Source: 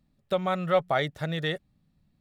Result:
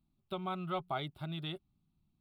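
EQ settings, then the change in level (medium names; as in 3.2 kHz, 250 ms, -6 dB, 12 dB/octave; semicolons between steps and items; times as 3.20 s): peaking EQ 380 Hz +13 dB 0.48 oct; static phaser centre 1.8 kHz, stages 6; -8.0 dB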